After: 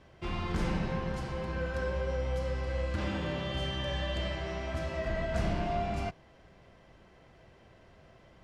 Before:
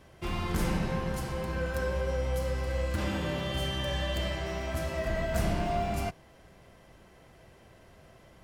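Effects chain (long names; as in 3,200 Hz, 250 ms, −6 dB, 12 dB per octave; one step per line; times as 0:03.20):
low-pass filter 5,200 Hz 12 dB per octave
level −2 dB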